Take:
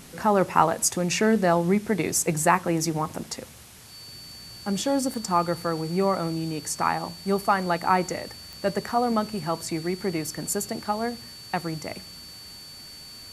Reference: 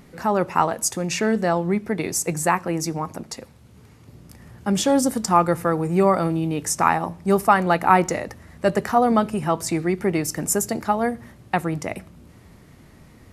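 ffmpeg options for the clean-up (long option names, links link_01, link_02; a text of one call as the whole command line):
ffmpeg -i in.wav -af "adeclick=threshold=4,bandreject=frequency=4500:width=30,afwtdn=0.0045,asetnsamples=nb_out_samples=441:pad=0,asendcmd='3.63 volume volume 6dB',volume=0dB" out.wav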